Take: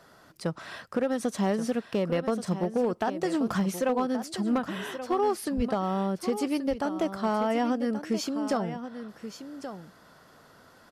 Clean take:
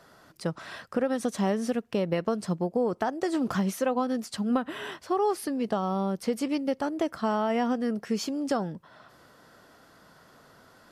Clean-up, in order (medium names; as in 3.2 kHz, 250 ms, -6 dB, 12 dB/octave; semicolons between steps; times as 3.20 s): clip repair -19 dBFS; 5.56–5.68 s: high-pass 140 Hz 24 dB/octave; inverse comb 1129 ms -11 dB